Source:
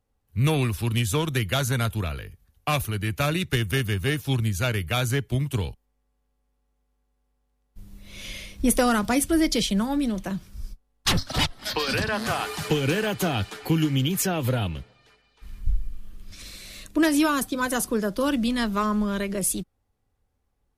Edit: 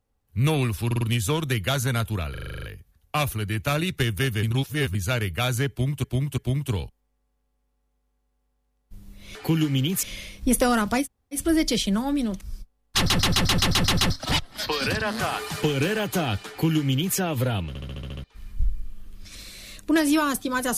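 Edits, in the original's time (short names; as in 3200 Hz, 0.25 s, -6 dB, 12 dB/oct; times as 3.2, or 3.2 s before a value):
0.86 stutter 0.05 s, 4 plays
2.16 stutter 0.04 s, 9 plays
3.96–4.48 reverse
5.23–5.57 loop, 3 plays
9.2 insert room tone 0.33 s, crossfade 0.10 s
10.25–10.52 cut
11.08 stutter 0.13 s, 9 plays
13.56–14.24 copy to 8.2
14.75 stutter in place 0.07 s, 8 plays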